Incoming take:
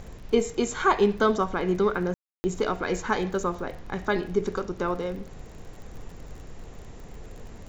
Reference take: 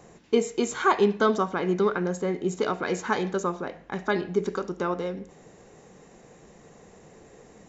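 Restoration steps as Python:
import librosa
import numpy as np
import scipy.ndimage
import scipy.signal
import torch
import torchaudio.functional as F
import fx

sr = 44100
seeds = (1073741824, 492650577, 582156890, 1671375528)

y = fx.fix_declick_ar(x, sr, threshold=6.5)
y = fx.fix_ambience(y, sr, seeds[0], print_start_s=5.28, print_end_s=5.78, start_s=2.14, end_s=2.44)
y = fx.noise_reduce(y, sr, print_start_s=5.28, print_end_s=5.78, reduce_db=9.0)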